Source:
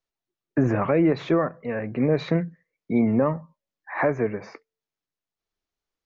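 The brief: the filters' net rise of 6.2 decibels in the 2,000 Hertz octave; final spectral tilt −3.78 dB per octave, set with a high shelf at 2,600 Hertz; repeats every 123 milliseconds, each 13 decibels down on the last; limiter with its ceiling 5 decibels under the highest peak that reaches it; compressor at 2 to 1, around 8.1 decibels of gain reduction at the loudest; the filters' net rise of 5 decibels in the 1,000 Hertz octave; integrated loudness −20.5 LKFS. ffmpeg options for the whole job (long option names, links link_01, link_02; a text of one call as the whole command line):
ffmpeg -i in.wav -af "equalizer=frequency=1000:width_type=o:gain=5,equalizer=frequency=2000:width_type=o:gain=8.5,highshelf=frequency=2600:gain=-6.5,acompressor=threshold=-30dB:ratio=2,alimiter=limit=-20dB:level=0:latency=1,aecho=1:1:123|246|369:0.224|0.0493|0.0108,volume=11dB" out.wav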